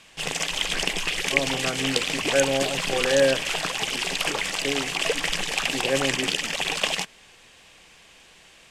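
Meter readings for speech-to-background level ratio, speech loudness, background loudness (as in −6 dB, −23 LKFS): −2.5 dB, −27.5 LKFS, −25.0 LKFS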